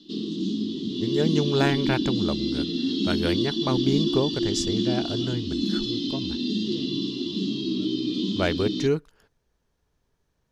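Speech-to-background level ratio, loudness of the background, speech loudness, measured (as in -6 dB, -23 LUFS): -1.5 dB, -26.5 LUFS, -28.0 LUFS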